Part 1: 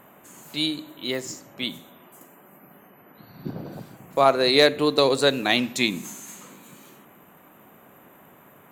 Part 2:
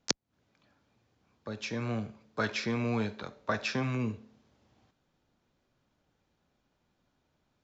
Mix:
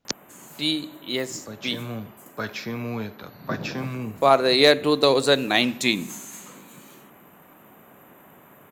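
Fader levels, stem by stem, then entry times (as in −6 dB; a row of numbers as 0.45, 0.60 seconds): +1.0, +0.5 decibels; 0.05, 0.00 seconds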